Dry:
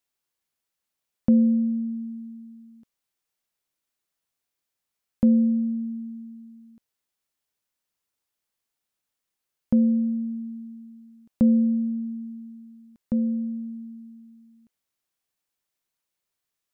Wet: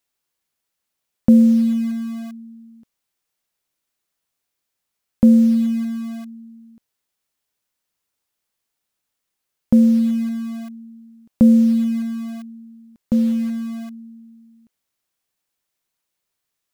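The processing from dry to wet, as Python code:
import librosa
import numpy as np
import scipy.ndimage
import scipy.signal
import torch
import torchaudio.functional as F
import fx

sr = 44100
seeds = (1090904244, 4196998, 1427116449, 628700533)

p1 = fx.quant_dither(x, sr, seeds[0], bits=6, dither='none')
p2 = x + F.gain(torch.from_numpy(p1), -10.0).numpy()
y = F.gain(torch.from_numpy(p2), 4.5).numpy()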